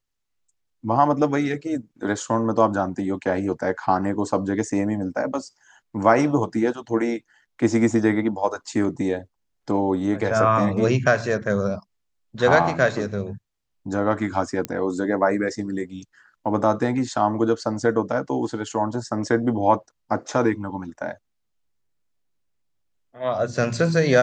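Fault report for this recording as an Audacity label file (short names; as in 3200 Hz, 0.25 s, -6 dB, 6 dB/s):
14.650000	14.650000	pop -11 dBFS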